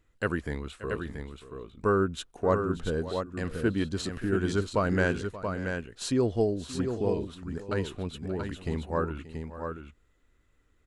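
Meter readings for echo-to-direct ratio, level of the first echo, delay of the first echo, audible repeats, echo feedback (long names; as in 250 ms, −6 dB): −6.0 dB, −16.0 dB, 580 ms, 2, repeats not evenly spaced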